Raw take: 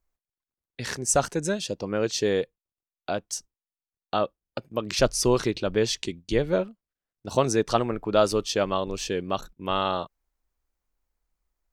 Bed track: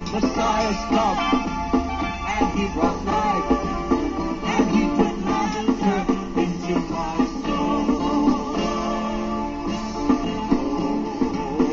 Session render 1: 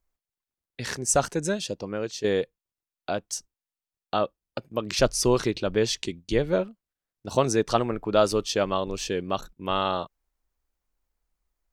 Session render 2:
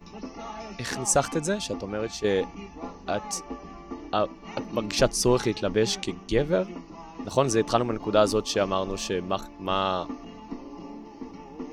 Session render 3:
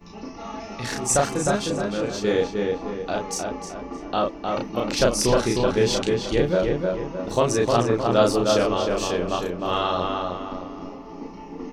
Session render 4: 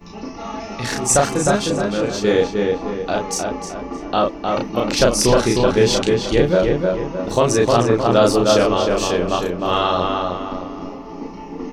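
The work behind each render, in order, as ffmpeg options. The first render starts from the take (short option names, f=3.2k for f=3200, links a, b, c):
-filter_complex "[0:a]asplit=2[a][b];[a]atrim=end=2.24,asetpts=PTS-STARTPTS,afade=t=out:st=1.61:d=0.63:silence=0.334965[c];[b]atrim=start=2.24,asetpts=PTS-STARTPTS,afade=t=in:d=0.004:c=hsin:silence=0.334965[d];[c][d]concat=n=2:v=0:a=1"
-filter_complex "[1:a]volume=-17.5dB[a];[0:a][a]amix=inputs=2:normalize=0"
-filter_complex "[0:a]asplit=2[a][b];[b]adelay=34,volume=-2dB[c];[a][c]amix=inputs=2:normalize=0,asplit=2[d][e];[e]adelay=308,lowpass=f=2.8k:p=1,volume=-3dB,asplit=2[f][g];[g]adelay=308,lowpass=f=2.8k:p=1,volume=0.44,asplit=2[h][i];[i]adelay=308,lowpass=f=2.8k:p=1,volume=0.44,asplit=2[j][k];[k]adelay=308,lowpass=f=2.8k:p=1,volume=0.44,asplit=2[l][m];[m]adelay=308,lowpass=f=2.8k:p=1,volume=0.44,asplit=2[n][o];[o]adelay=308,lowpass=f=2.8k:p=1,volume=0.44[p];[d][f][h][j][l][n][p]amix=inputs=7:normalize=0"
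-af "volume=5.5dB,alimiter=limit=-3dB:level=0:latency=1"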